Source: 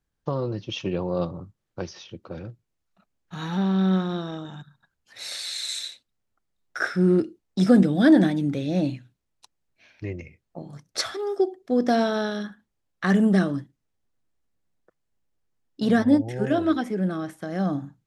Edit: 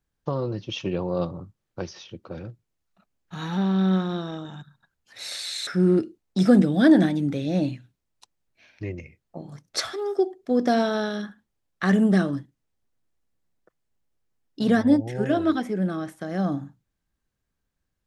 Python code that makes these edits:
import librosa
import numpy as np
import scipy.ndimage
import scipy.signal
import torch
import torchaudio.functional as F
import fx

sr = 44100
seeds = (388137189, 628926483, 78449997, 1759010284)

y = fx.edit(x, sr, fx.cut(start_s=5.67, length_s=1.21), tone=tone)